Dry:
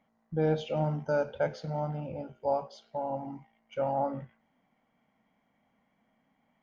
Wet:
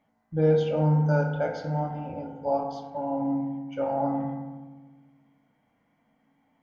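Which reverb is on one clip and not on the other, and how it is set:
feedback delay network reverb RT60 1.3 s, low-frequency decay 1.4×, high-frequency decay 0.3×, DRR 1 dB

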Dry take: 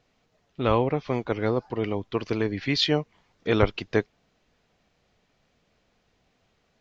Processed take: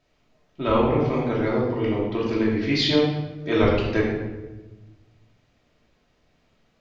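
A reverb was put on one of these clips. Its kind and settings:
rectangular room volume 640 cubic metres, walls mixed, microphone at 2.8 metres
level −4 dB

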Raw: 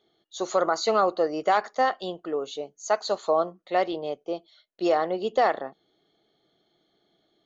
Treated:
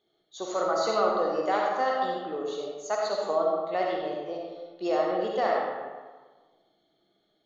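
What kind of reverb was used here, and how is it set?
comb and all-pass reverb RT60 1.4 s, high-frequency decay 0.6×, pre-delay 20 ms, DRR −2 dB
level −6.5 dB

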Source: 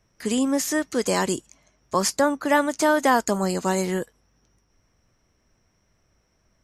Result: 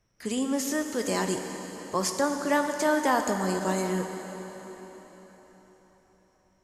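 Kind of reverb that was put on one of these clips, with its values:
dense smooth reverb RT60 4.5 s, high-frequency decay 0.9×, DRR 4.5 dB
level −6 dB

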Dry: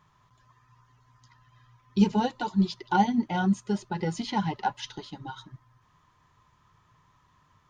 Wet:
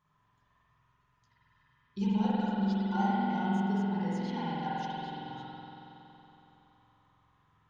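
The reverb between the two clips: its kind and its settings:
spring reverb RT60 3.5 s, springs 46 ms, chirp 80 ms, DRR −8.5 dB
level −14 dB

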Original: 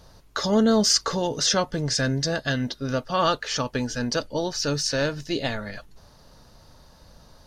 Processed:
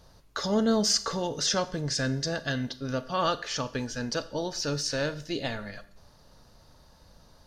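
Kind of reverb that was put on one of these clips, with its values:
four-comb reverb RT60 0.54 s, combs from 27 ms, DRR 14 dB
level −5 dB

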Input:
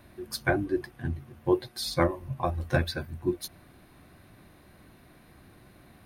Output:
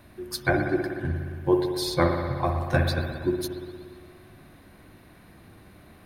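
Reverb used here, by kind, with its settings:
spring reverb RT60 2 s, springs 58 ms, chirp 70 ms, DRR 3.5 dB
level +2 dB

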